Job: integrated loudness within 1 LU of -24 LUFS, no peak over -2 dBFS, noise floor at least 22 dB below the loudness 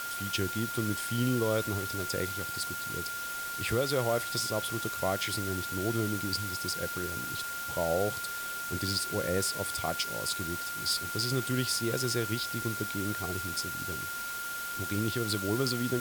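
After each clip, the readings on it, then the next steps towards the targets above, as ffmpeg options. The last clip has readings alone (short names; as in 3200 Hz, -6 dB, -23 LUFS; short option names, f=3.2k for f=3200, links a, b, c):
steady tone 1400 Hz; tone level -36 dBFS; noise floor -37 dBFS; noise floor target -54 dBFS; loudness -31.5 LUFS; peak -16.0 dBFS; loudness target -24.0 LUFS
-> -af "bandreject=f=1.4k:w=30"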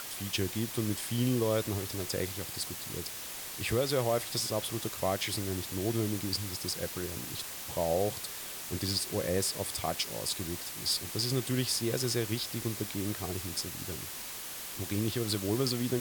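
steady tone none; noise floor -42 dBFS; noise floor target -55 dBFS
-> -af "afftdn=nr=13:nf=-42"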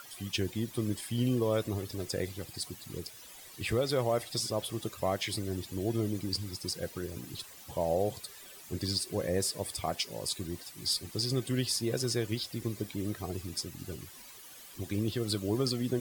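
noise floor -51 dBFS; noise floor target -56 dBFS
-> -af "afftdn=nr=6:nf=-51"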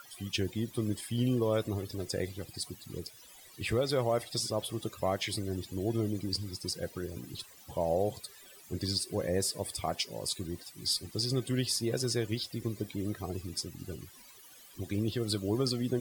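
noise floor -55 dBFS; noise floor target -56 dBFS
-> -af "afftdn=nr=6:nf=-55"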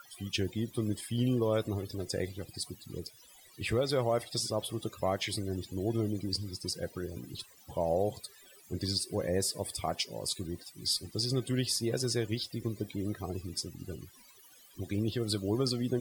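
noise floor -58 dBFS; loudness -33.5 LUFS; peak -18.0 dBFS; loudness target -24.0 LUFS
-> -af "volume=9.5dB"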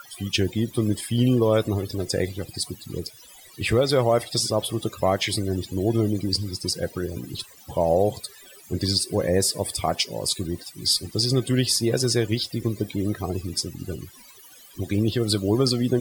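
loudness -24.0 LUFS; peak -8.5 dBFS; noise floor -48 dBFS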